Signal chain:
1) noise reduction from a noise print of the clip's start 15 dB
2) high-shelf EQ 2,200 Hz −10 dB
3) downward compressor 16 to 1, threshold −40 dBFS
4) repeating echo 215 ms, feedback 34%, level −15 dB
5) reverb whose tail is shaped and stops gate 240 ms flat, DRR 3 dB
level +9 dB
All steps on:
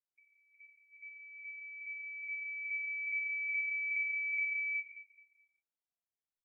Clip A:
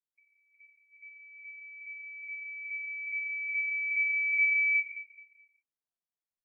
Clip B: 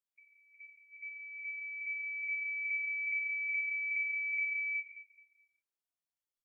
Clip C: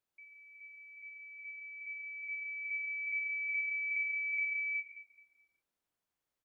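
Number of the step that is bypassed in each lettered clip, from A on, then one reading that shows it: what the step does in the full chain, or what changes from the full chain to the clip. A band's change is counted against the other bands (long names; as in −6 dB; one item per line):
3, average gain reduction 2.5 dB
2, change in momentary loudness spread −2 LU
1, change in momentary loudness spread +3 LU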